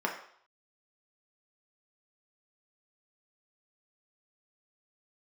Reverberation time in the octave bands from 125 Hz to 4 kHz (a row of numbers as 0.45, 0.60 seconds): 0.35, 0.45, 0.55, 0.60, 0.55, 0.60 seconds